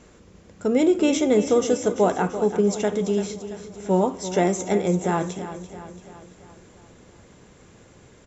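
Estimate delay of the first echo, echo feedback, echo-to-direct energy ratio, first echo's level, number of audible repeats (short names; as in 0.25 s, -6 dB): 0.338 s, 54%, -10.5 dB, -12.0 dB, 5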